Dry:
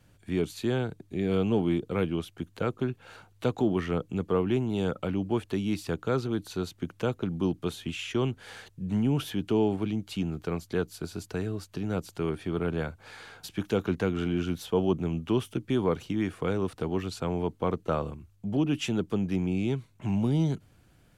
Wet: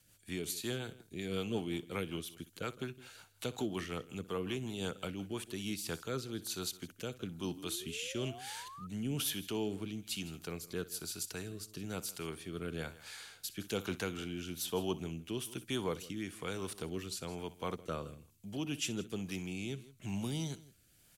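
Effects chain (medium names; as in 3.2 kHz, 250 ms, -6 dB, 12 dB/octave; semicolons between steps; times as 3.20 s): pre-emphasis filter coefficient 0.9; multi-tap echo 61/162 ms -17.5/-18.5 dB; rotary cabinet horn 5.5 Hz, later 1.1 Hz, at 5.28 s; painted sound rise, 7.42–8.87 s, 230–1300 Hz -59 dBFS; trim +9 dB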